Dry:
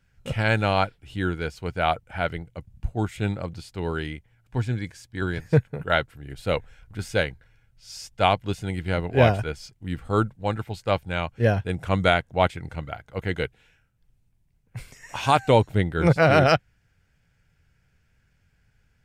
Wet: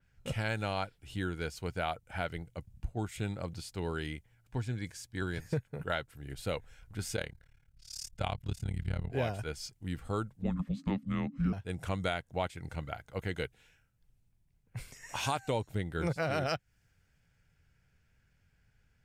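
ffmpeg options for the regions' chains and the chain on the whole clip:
ffmpeg -i in.wav -filter_complex "[0:a]asettb=1/sr,asplit=3[link_01][link_02][link_03];[link_01]atrim=end=7.164[link_04];[link_02]atrim=start=7.16:end=9.12,asetpts=PTS-STARTPTS,afade=type=in:duration=0.004:curve=qsin,afade=type=out:start_time=1.956:duration=0.004:curve=qsin,asubboost=boost=8:cutoff=150,tremolo=f=36:d=0.947[link_05];[link_03]atrim=start=9.116[link_06];[link_04][link_05]acrossfade=duration=0.004:curve1=hsin:curve2=qsin[link_07];[link_07][link_06]acrossfade=duration=0.004:curve1=qsin:curve2=hsin,asettb=1/sr,asplit=3[link_08][link_09][link_10];[link_08]atrim=end=10.424[link_11];[link_09]atrim=start=10.42:end=11.53,asetpts=PTS-STARTPTS,afade=type=in:duration=0.004:curve=qsin,afade=type=out:start_time=1.106:duration=0.004:curve=qsin,aemphasis=mode=reproduction:type=bsi,afreqshift=-290[link_12];[link_10]atrim=start=11.526[link_13];[link_11][link_12]acrossfade=duration=0.004:curve1=hsin:curve2=qsin[link_14];[link_14][link_13]acrossfade=duration=0.004:curve1=qsin:curve2=hsin,acompressor=threshold=-27dB:ratio=3,adynamicequalizer=threshold=0.00251:dfrequency=4500:dqfactor=0.7:tfrequency=4500:tqfactor=0.7:attack=5:release=100:ratio=0.375:range=4:mode=boostabove:tftype=highshelf,volume=-5dB" out.wav

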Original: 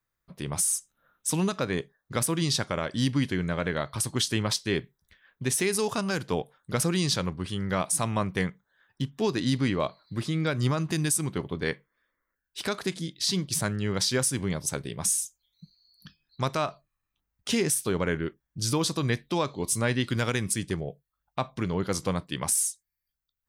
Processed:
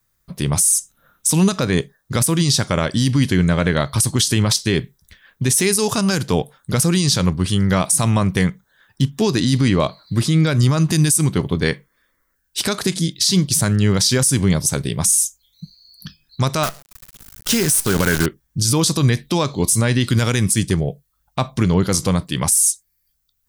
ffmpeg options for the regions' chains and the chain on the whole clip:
ffmpeg -i in.wav -filter_complex "[0:a]asettb=1/sr,asplit=3[link_01][link_02][link_03];[link_01]atrim=end=16.634[link_04];[link_02]atrim=start=16.63:end=18.26,asetpts=PTS-STARTPTS,afade=type=in:duration=0.004:curve=qsin,afade=type=out:start_time=1.626:duration=0.004:curve=qsin,acompressor=mode=upward:threshold=-36dB:ratio=2.5:attack=3.2:release=140:knee=2.83:detection=peak,equalizer=frequency=1500:width_type=o:width=0.36:gain=10,acrusher=bits=6:dc=4:mix=0:aa=0.000001[link_05];[link_03]atrim=start=18.256[link_06];[link_04][link_05]acrossfade=duration=0.004:curve1=hsin:curve2=qsin[link_07];[link_07][link_06]acrossfade=duration=0.004:curve1=qsin:curve2=hsin,bass=frequency=250:gain=6,treble=frequency=4000:gain=9,alimiter=level_in=15dB:limit=-1dB:release=50:level=0:latency=1,volume=-5.5dB" out.wav

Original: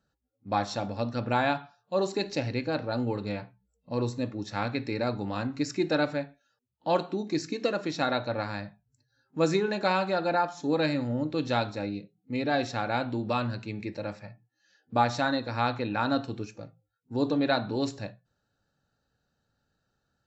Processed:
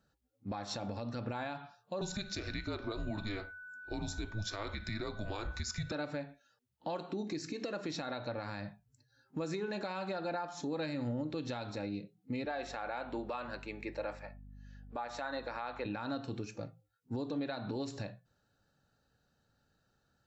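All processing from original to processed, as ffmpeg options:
ffmpeg -i in.wav -filter_complex "[0:a]asettb=1/sr,asplit=3[link_01][link_02][link_03];[link_01]atrim=end=2.014[link_04];[link_02]atrim=start=2.01:end=5.92,asetpts=PTS-STARTPTS,afade=type=in:duration=0.004:curve=qsin,afade=type=out:start_time=3.906:duration=0.004:curve=qsin,bass=frequency=250:gain=-9,treble=frequency=4000:gain=6,aeval=exprs='val(0)+0.00398*sin(2*PI*1700*n/s)':channel_layout=same,afreqshift=-210[link_05];[link_03]atrim=start=5.916[link_06];[link_04][link_05]acrossfade=duration=0.004:curve1=hsin:curve2=qsin[link_07];[link_07][link_06]acrossfade=duration=0.004:curve1=qsin:curve2=hsin,asettb=1/sr,asplit=3[link_08][link_09][link_10];[link_08]atrim=end=12.454[link_11];[link_09]atrim=start=12.45:end=15.86,asetpts=PTS-STARTPTS,afade=type=in:duration=0.004:curve=qsin,afade=type=out:start_time=3.406:duration=0.004:curve=qsin,highpass=490,equalizer=frequency=5000:width=0.84:gain=-8.5,aeval=exprs='val(0)+0.00251*(sin(2*PI*50*n/s)+sin(2*PI*2*50*n/s)/2+sin(2*PI*3*50*n/s)/3+sin(2*PI*4*50*n/s)/4+sin(2*PI*5*50*n/s)/5)':channel_layout=same[link_12];[link_10]atrim=start=15.856[link_13];[link_11][link_12]acrossfade=duration=0.004:curve1=hsin:curve2=qsin[link_14];[link_14][link_13]acrossfade=duration=0.004:curve1=qsin:curve2=hsin,acompressor=threshold=-31dB:ratio=6,alimiter=level_in=6dB:limit=-24dB:level=0:latency=1:release=129,volume=-6dB,volume=1.5dB" out.wav

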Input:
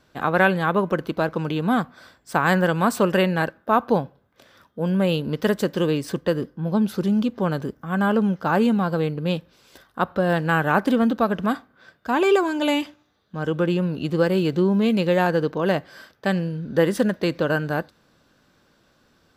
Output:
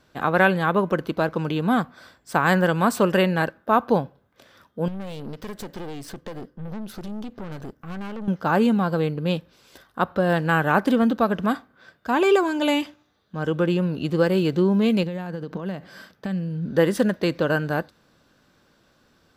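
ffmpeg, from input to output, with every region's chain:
ffmpeg -i in.wav -filter_complex "[0:a]asettb=1/sr,asplit=3[link_01][link_02][link_03];[link_01]atrim=end=4.884[link_04];[link_02]atrim=start=4.88:end=8.28,asetpts=PTS-STARTPTS,afade=type=in:duration=0.004:curve=qsin,afade=type=out:start_time=3.396:duration=0.004:curve=qsin,acompressor=threshold=-23dB:ratio=16:attack=3.2:release=140:knee=1:detection=peak,aeval=exprs='(tanh(31.6*val(0)+0.75)-tanh(0.75))/31.6':channel_layout=same[link_05];[link_03]atrim=start=8.276[link_06];[link_04][link_05]acrossfade=duration=0.004:curve1=hsin:curve2=qsin[link_07];[link_07][link_06]acrossfade=duration=0.004:curve1=qsin:curve2=hsin,asettb=1/sr,asplit=3[link_08][link_09][link_10];[link_08]atrim=end=15.034[link_11];[link_09]atrim=start=15.03:end=16.69,asetpts=PTS-STARTPTS,afade=type=in:duration=0.004:curve=qsin,afade=type=out:start_time=1.656:duration=0.004:curve=qsin,acompressor=threshold=-29dB:ratio=20:attack=3.2:release=140:knee=1:detection=peak,equalizer=frequency=190:width_type=o:width=0.61:gain=9.5[link_12];[link_10]atrim=start=16.686[link_13];[link_11][link_12]acrossfade=duration=0.004:curve1=hsin:curve2=qsin[link_14];[link_14][link_13]acrossfade=duration=0.004:curve1=qsin:curve2=hsin" out.wav

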